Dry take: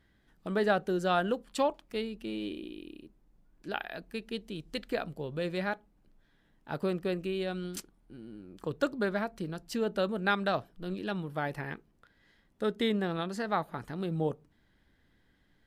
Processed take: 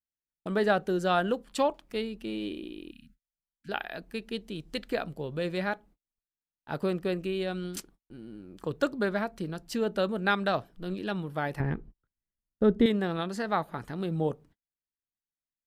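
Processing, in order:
noise gate −56 dBFS, range −41 dB
0:02.91–0:03.69: linear-phase brick-wall band-stop 270–1,300 Hz
0:11.60–0:12.86: spectral tilt −4 dB per octave
level +2 dB

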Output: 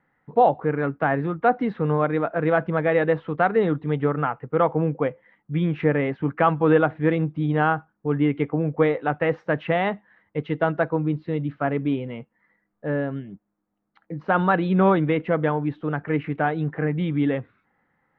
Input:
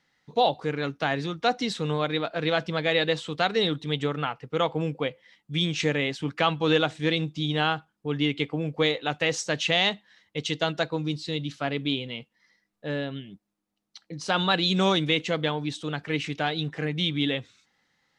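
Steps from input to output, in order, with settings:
low-pass filter 1,700 Hz 24 dB per octave
level +5.5 dB

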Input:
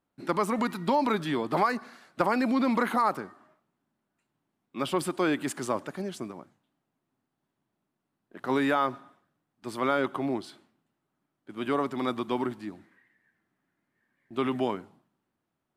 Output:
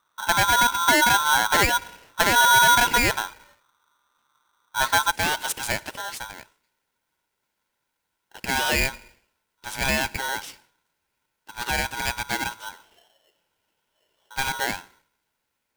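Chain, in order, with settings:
spectral tilt −3.5 dB per octave, from 0:05.10 +2 dB per octave
soft clipping −12.5 dBFS, distortion −21 dB
ring modulator with a square carrier 1,200 Hz
level +4 dB

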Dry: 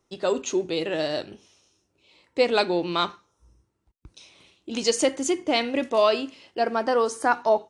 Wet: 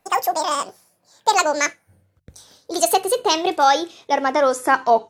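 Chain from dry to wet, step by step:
gliding playback speed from 199% → 103%
hum removal 48.03 Hz, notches 3
level +5 dB

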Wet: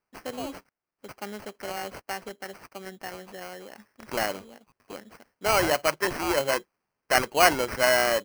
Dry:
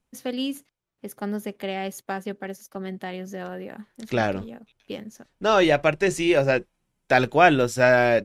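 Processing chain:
high-pass filter 870 Hz 6 dB per octave
sample-rate reduction 3,600 Hz, jitter 0%

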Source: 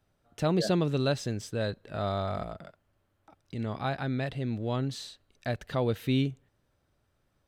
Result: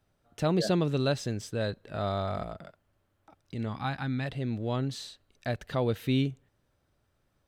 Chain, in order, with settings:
gain on a spectral selection 0:03.69–0:04.25, 320–740 Hz −9 dB

